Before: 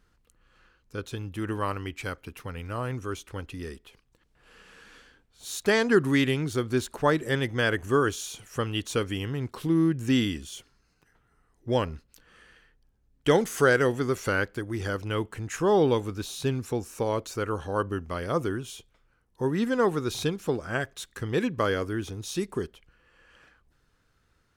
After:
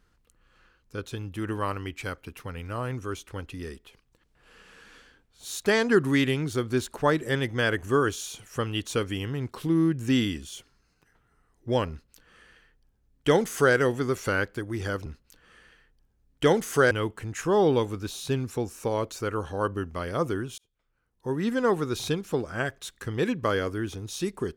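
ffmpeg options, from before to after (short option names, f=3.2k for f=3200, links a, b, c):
-filter_complex "[0:a]asplit=4[a][b][c][d];[a]atrim=end=15.062[e];[b]atrim=start=11.898:end=13.752[f];[c]atrim=start=15.058:end=18.73,asetpts=PTS-STARTPTS,afade=t=out:st=3.668:d=0.004:c=hsin[g];[d]atrim=start=18.73,asetpts=PTS-STARTPTS,afade=t=in:d=0.96[h];[e][f]acrossfade=d=0.004:c1=hsin:c2=hsin[i];[g][h]concat=n=2:v=0:a=1[j];[i][j]acrossfade=d=0.004:c1=hsin:c2=hsin"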